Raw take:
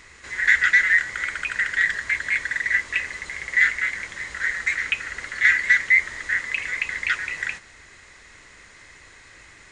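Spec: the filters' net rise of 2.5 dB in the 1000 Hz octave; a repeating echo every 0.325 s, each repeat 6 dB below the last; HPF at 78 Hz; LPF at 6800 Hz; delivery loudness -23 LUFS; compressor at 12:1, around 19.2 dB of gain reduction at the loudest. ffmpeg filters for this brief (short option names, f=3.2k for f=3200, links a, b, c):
-af "highpass=78,lowpass=6.8k,equalizer=f=1k:t=o:g=4,acompressor=threshold=-31dB:ratio=12,aecho=1:1:325|650|975|1300|1625|1950:0.501|0.251|0.125|0.0626|0.0313|0.0157,volume=10dB"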